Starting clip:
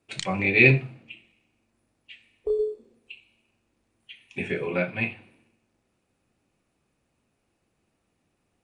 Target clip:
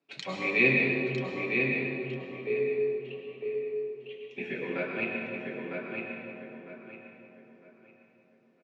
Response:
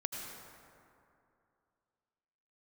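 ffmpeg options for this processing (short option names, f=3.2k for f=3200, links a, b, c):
-filter_complex "[0:a]lowpass=f=5.6k:w=0.5412,lowpass=f=5.6k:w=1.3066,flanger=delay=6.9:depth=2:regen=-37:speed=0.35:shape=triangular,highpass=f=170:w=0.5412,highpass=f=170:w=1.3066,asplit=2[a][b];[b]adelay=954,lowpass=f=3.9k:p=1,volume=-4dB,asplit=2[c][d];[d]adelay=954,lowpass=f=3.9k:p=1,volume=0.3,asplit=2[e][f];[f]adelay=954,lowpass=f=3.9k:p=1,volume=0.3,asplit=2[g][h];[h]adelay=954,lowpass=f=3.9k:p=1,volume=0.3[i];[a][c][e][g][i]amix=inputs=5:normalize=0[j];[1:a]atrim=start_sample=2205,asetrate=35280,aresample=44100[k];[j][k]afir=irnorm=-1:irlink=0,volume=-2.5dB"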